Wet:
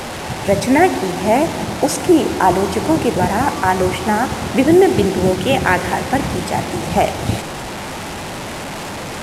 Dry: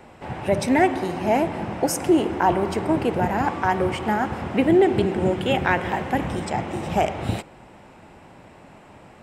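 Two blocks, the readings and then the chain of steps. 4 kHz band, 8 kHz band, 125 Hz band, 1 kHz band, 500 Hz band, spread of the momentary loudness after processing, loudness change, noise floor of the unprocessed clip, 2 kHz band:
+9.5 dB, +10.0 dB, +6.0 dB, +6.0 dB, +6.0 dB, 14 LU, +5.5 dB, -48 dBFS, +6.5 dB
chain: delta modulation 64 kbps, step -27 dBFS; gain +6 dB

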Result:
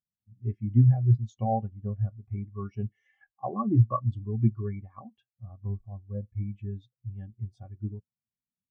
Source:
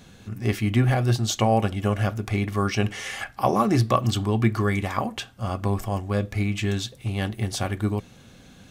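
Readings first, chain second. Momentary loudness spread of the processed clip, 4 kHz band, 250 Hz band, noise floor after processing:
18 LU, under -35 dB, -7.5 dB, under -85 dBFS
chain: spectral expander 2.5:1; gain -4 dB

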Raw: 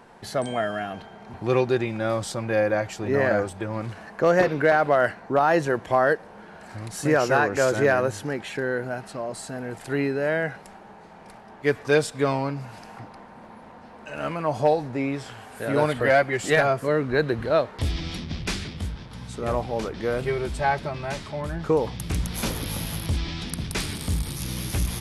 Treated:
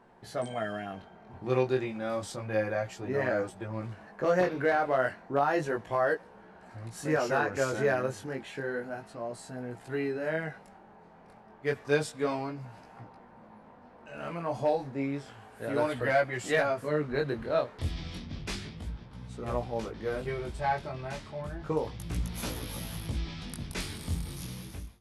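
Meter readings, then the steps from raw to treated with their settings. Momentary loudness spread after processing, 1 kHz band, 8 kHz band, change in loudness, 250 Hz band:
14 LU, -7.0 dB, -9.0 dB, -7.0 dB, -7.0 dB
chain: ending faded out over 0.58 s; chorus 0.31 Hz, delay 16 ms, depth 7.3 ms; mismatched tape noise reduction decoder only; gain -4.5 dB

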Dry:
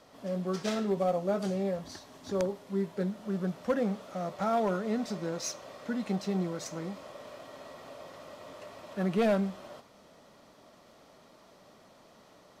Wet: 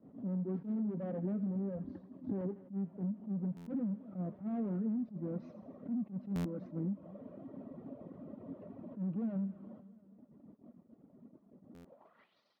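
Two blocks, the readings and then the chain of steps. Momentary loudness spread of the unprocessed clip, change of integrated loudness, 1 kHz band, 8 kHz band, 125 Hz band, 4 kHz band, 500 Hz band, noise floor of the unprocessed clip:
18 LU, -7.0 dB, -19.0 dB, under -25 dB, -2.5 dB, under -20 dB, -14.0 dB, -58 dBFS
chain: low shelf 330 Hz +10 dB; reverb removal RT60 1.1 s; overloaded stage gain 31 dB; gate -56 dBFS, range -10 dB; thin delay 83 ms, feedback 50%, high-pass 1500 Hz, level -10 dB; band-pass sweep 230 Hz -> 4800 Hz, 11.76–12.39; air absorption 320 m; on a send: feedback echo 0.232 s, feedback 54%, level -23 dB; on the sum: compressor 12:1, threshold -41 dBFS, peak gain reduction 9.5 dB; stuck buffer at 3.56/6.35/11.74, samples 512, times 8; attack slew limiter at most 220 dB/s; gain +8.5 dB

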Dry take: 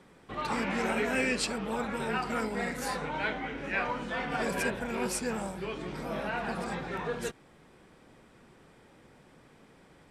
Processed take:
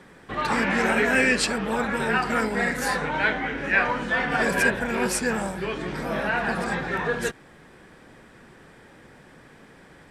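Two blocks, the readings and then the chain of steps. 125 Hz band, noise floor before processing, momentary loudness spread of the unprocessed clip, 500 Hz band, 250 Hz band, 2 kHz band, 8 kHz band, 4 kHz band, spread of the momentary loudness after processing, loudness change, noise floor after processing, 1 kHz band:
+7.0 dB, -59 dBFS, 8 LU, +7.0 dB, +7.0 dB, +11.5 dB, +7.0 dB, +7.0 dB, 8 LU, +8.5 dB, -51 dBFS, +7.5 dB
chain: bell 1700 Hz +7.5 dB 0.35 oct; gain +7 dB

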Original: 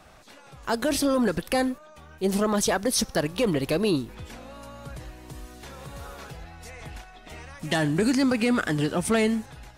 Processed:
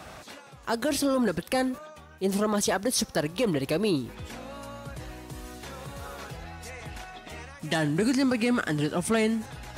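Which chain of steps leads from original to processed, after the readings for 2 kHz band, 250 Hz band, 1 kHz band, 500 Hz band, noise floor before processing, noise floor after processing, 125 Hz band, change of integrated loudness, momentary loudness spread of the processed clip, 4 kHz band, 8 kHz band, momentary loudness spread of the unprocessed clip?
-2.0 dB, -2.0 dB, -1.5 dB, -2.0 dB, -50 dBFS, -49 dBFS, -2.0 dB, -2.0 dB, 16 LU, -2.0 dB, -2.0 dB, 20 LU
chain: HPF 62 Hz; reverse; upward compressor, threshold -31 dBFS; reverse; gain -2 dB

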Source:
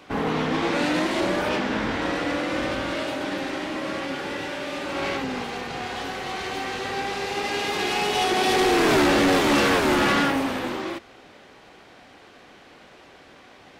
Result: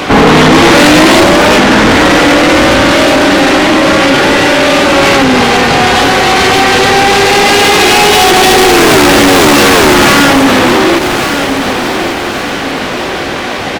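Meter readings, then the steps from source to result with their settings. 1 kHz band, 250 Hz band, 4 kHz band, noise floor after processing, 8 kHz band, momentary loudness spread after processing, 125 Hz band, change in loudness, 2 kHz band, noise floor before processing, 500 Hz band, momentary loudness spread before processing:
+19.0 dB, +18.0 dB, +20.0 dB, -15 dBFS, +22.5 dB, 9 LU, +19.5 dB, +18.0 dB, +19.5 dB, -50 dBFS, +18.5 dB, 12 LU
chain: soft clip -31.5 dBFS, distortion -5 dB; on a send: feedback echo 1.139 s, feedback 40%, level -14 dB; on the sum: maximiser +34 dB; gain -1 dB

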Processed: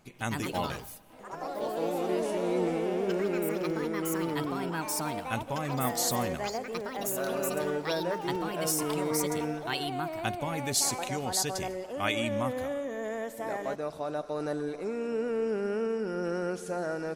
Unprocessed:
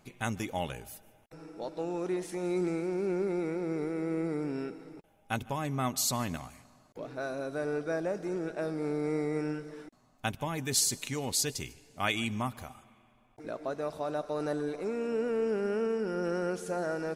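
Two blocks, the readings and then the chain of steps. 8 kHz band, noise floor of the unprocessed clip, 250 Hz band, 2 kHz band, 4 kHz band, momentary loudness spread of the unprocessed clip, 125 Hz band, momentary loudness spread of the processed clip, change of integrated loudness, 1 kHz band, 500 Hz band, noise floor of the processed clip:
+2.0 dB, -64 dBFS, +1.0 dB, +2.5 dB, +2.0 dB, 13 LU, +1.0 dB, 6 LU, +1.5 dB, +5.0 dB, +2.0 dB, -45 dBFS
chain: echoes that change speed 0.146 s, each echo +4 st, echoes 3

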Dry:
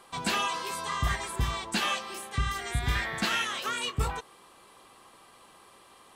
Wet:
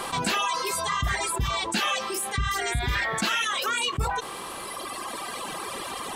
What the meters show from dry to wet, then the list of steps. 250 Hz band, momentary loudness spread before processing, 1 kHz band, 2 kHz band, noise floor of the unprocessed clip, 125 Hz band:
+3.0 dB, 5 LU, +5.5 dB, +4.5 dB, -56 dBFS, +1.0 dB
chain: reverb removal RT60 2 s; fast leveller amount 70%

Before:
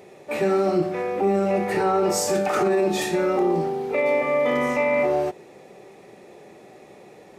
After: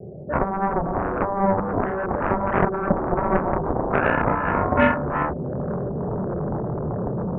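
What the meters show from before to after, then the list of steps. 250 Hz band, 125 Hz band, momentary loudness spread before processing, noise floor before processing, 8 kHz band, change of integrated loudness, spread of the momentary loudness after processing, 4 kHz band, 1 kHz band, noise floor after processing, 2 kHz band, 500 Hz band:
+1.5 dB, +8.5 dB, 4 LU, -48 dBFS, under -40 dB, -1.0 dB, 7 LU, under -10 dB, +4.0 dB, -29 dBFS, +2.0 dB, -3.0 dB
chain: steep low-pass 650 Hz 48 dB/oct; resonant low shelf 220 Hz +11.5 dB, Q 1.5; AGC gain up to 14.5 dB; limiter -9.5 dBFS, peak gain reduction 8.5 dB; compressor 5:1, threshold -23 dBFS, peak gain reduction 9.5 dB; chorus voices 4, 0.36 Hz, delay 25 ms, depth 2.5 ms; diffused feedback echo 0.477 s, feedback 58%, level -16 dB; vibrato 0.39 Hz 9.3 cents; added harmonics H 7 -9 dB, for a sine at -15 dBFS; gain +8.5 dB

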